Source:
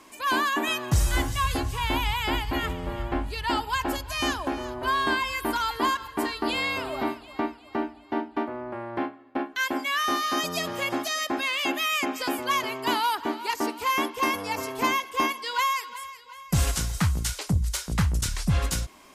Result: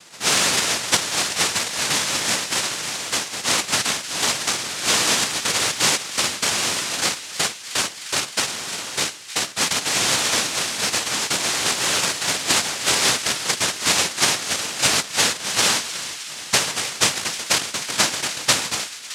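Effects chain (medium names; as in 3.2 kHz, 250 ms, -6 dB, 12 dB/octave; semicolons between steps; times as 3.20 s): noise-vocoded speech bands 1; feedback echo behind a high-pass 308 ms, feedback 75%, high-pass 1.6 kHz, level -14 dB; trim +5.5 dB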